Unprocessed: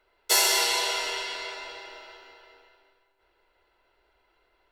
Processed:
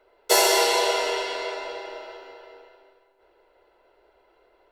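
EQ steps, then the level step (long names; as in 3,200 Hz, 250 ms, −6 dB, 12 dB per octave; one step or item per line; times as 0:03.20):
parametric band 510 Hz +13 dB 1.8 octaves
0.0 dB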